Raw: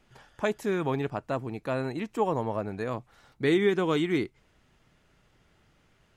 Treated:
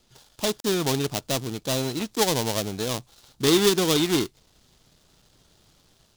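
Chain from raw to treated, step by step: dead-time distortion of 0.28 ms; level rider gain up to 4 dB; resonant high shelf 3 kHz +9.5 dB, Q 1.5

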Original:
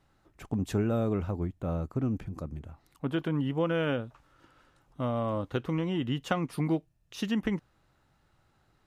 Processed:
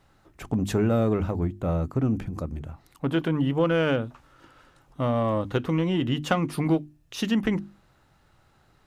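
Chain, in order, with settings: hum notches 50/100/150/200/250/300/350 Hz; in parallel at -7 dB: saturation -29 dBFS, distortion -11 dB; on the sum: trim +4 dB

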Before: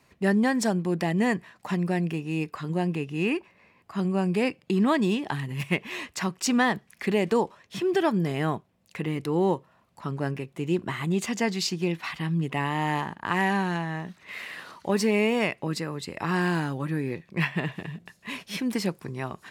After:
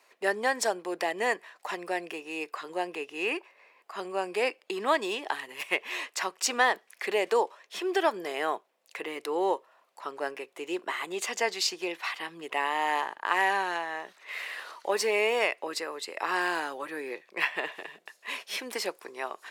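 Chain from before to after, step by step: high-pass 430 Hz 24 dB/octave; trim +1 dB

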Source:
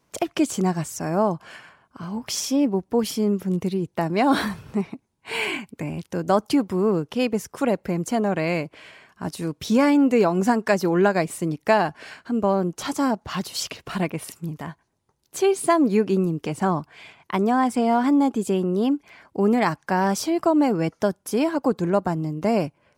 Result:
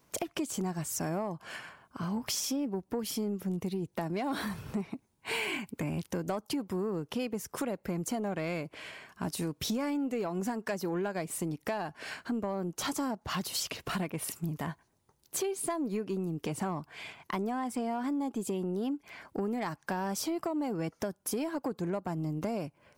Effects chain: treble shelf 12 kHz +10 dB; compression 10:1, threshold -29 dBFS, peak gain reduction 16.5 dB; saturation -23.5 dBFS, distortion -21 dB

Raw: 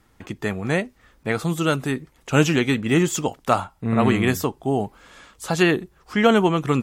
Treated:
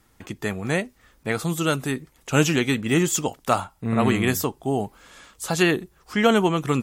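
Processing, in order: treble shelf 5.4 kHz +8 dB; trim -2 dB

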